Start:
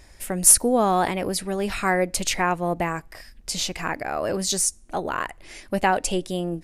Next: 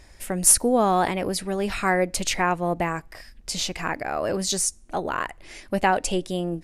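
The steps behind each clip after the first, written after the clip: treble shelf 11 kHz -6 dB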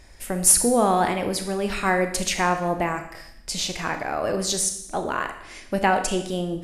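Schroeder reverb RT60 0.77 s, combs from 26 ms, DRR 6.5 dB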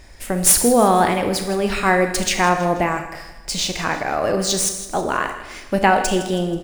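median filter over 3 samples; feedback delay 161 ms, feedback 44%, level -14.5 dB; trim +5 dB

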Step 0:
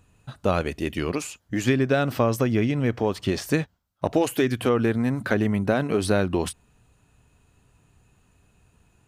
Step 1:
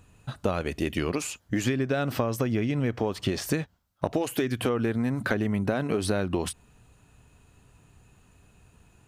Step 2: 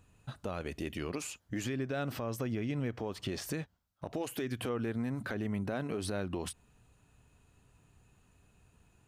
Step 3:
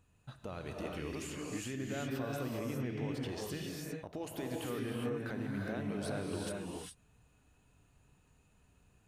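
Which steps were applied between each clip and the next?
compression, threshold -26 dBFS, peak gain reduction 10 dB; trim +3 dB
peak limiter -18.5 dBFS, peak gain reduction 9 dB; trim -7.5 dB
gated-style reverb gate 430 ms rising, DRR -1.5 dB; trim -6 dB

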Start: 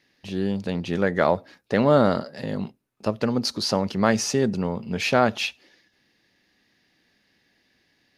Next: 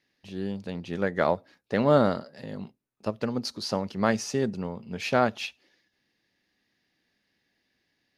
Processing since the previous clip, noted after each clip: upward expansion 1.5:1, over -28 dBFS; trim -2 dB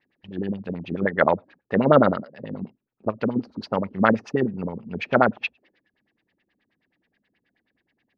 dynamic bell 1.4 kHz, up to +4 dB, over -36 dBFS, Q 0.92; LFO low-pass sine 9.4 Hz 210–3100 Hz; trim +1.5 dB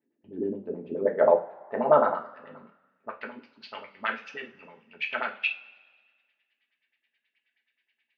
two-slope reverb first 0.3 s, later 1.6 s, from -21 dB, DRR 0 dB; band-pass sweep 330 Hz -> 2.7 kHz, 0.47–3.71 s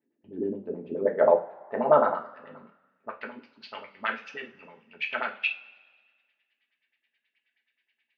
no audible change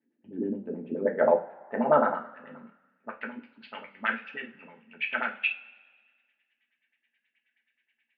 cabinet simulation 120–3100 Hz, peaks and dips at 230 Hz +5 dB, 400 Hz -5 dB, 640 Hz -4 dB, 1.1 kHz -6 dB, 1.6 kHz +3 dB; trim +1 dB

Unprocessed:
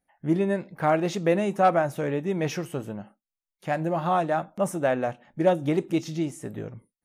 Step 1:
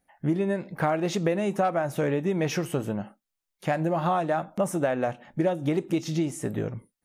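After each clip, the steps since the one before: compression 6:1, threshold -28 dBFS, peak gain reduction 13 dB; trim +6 dB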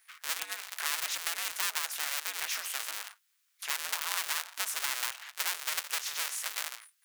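cycle switcher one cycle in 2, inverted; high-pass 1.4 kHz 24 dB/octave; spectrum-flattening compressor 2:1; trim +4 dB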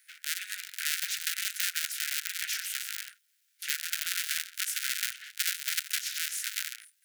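cycle switcher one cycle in 3, muted; steep high-pass 1.4 kHz 96 dB/octave; trim +3.5 dB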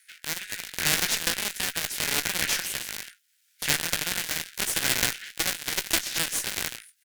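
doubling 18 ms -10 dB; rotary cabinet horn 0.75 Hz, later 8 Hz, at 5.63 s; Chebyshev shaper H 8 -17 dB, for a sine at -10 dBFS; trim +7 dB

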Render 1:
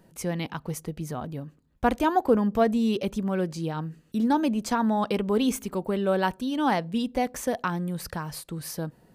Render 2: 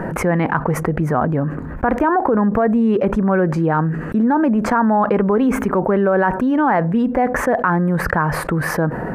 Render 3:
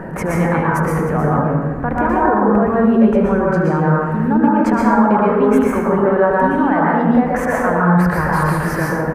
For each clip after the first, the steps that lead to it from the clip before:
FFT filter 110 Hz 0 dB, 1.7 kHz +8 dB, 3.6 kHz -21 dB; peak limiter -14.5 dBFS, peak gain reduction 10 dB; level flattener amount 70%; trim +5 dB
delay 76 ms -17 dB; plate-style reverb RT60 1.4 s, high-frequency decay 0.45×, pre-delay 105 ms, DRR -5 dB; trim -4.5 dB

